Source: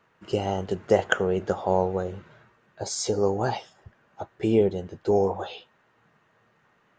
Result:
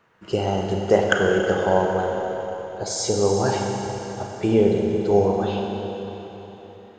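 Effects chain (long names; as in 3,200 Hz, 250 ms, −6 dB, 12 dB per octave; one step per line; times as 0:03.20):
four-comb reverb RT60 3.9 s, combs from 31 ms, DRR 0.5 dB
level +2.5 dB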